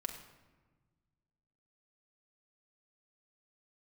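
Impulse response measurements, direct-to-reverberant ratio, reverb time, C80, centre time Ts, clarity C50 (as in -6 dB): 2.5 dB, 1.3 s, 9.0 dB, 23 ms, 7.5 dB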